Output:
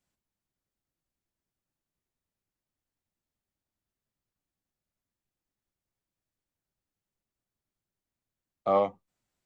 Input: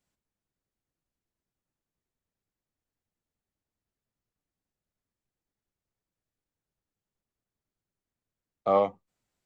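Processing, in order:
notch filter 460 Hz, Q 12
level −1 dB

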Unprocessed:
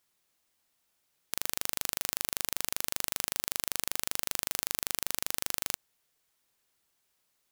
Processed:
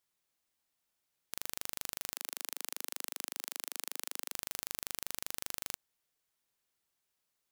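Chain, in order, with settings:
0:02.13–0:04.34: high-pass filter 270 Hz 24 dB per octave
level −7.5 dB

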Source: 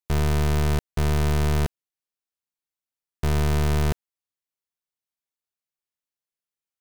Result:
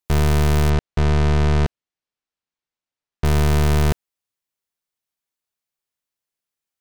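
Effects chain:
0:00.70–0:03.25: high-frequency loss of the air 91 metres
level +5 dB

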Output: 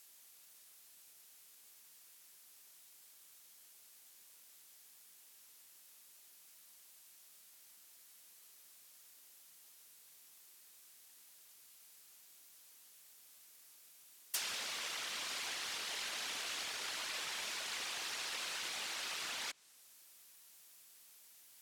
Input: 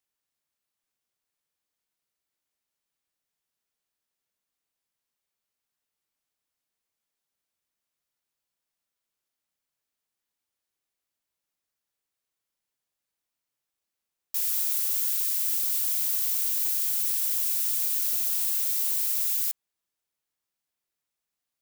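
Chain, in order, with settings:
high-pass filter 200 Hz 24 dB per octave
random phases in short frames
spectral tilt −2.5 dB per octave
background noise blue −68 dBFS
treble cut that deepens with the level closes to 1,300 Hz, closed at −28 dBFS
level +9.5 dB

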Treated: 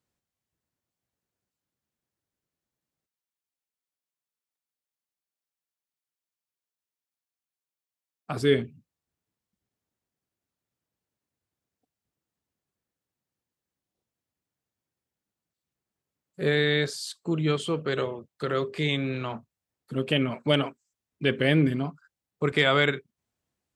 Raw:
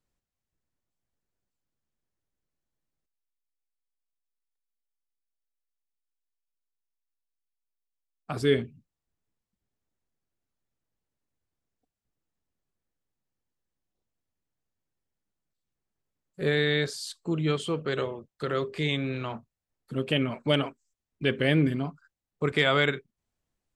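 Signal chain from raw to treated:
high-pass filter 75 Hz
level +1.5 dB

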